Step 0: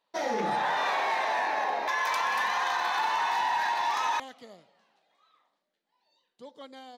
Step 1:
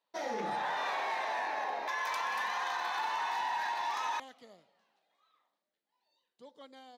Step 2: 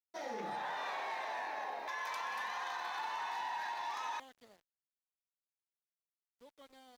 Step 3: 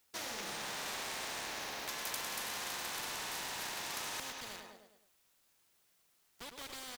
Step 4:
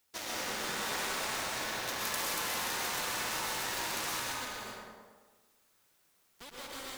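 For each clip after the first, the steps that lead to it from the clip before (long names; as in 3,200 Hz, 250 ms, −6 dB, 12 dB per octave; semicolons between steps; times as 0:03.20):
low-shelf EQ 91 Hz −7.5 dB; level −6.5 dB
centre clipping without the shift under −56 dBFS; harmonic generator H 7 −42 dB, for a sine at −23.5 dBFS; level −5.5 dB
on a send: repeating echo 104 ms, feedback 47%, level −11 dB; on the sum: every bin compressed towards the loudest bin 4 to 1; level +7.5 dB
in parallel at −6 dB: bit reduction 6 bits; on the sum: dense smooth reverb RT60 1.3 s, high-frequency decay 0.45×, pre-delay 110 ms, DRR −4 dB; level −1.5 dB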